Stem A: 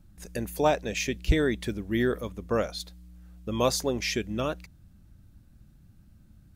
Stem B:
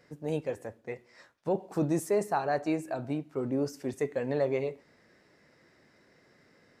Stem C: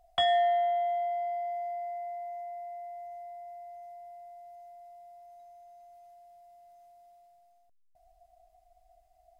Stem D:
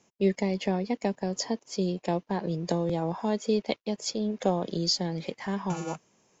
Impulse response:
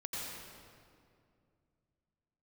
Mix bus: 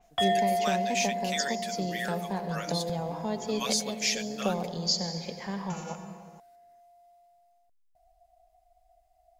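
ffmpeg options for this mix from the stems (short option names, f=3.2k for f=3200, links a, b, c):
-filter_complex "[0:a]highpass=1.4k,acrossover=split=8300[a][b];[b]acompressor=threshold=-53dB:ratio=4:attack=1:release=60[c];[a][c]amix=inputs=2:normalize=0,aecho=1:1:7.2:0.72,volume=-2dB[d];[1:a]volume=-17dB[e];[2:a]volume=-1dB[f];[3:a]equalizer=f=320:w=4.8:g=-15,volume=-5.5dB,asplit=2[g][h];[h]volume=-6dB[i];[4:a]atrim=start_sample=2205[j];[i][j]afir=irnorm=-1:irlink=0[k];[d][e][f][g][k]amix=inputs=5:normalize=0,adynamicequalizer=threshold=0.00501:dfrequency=4800:dqfactor=0.7:tfrequency=4800:tqfactor=0.7:attack=5:release=100:ratio=0.375:range=3:mode=boostabove:tftype=highshelf"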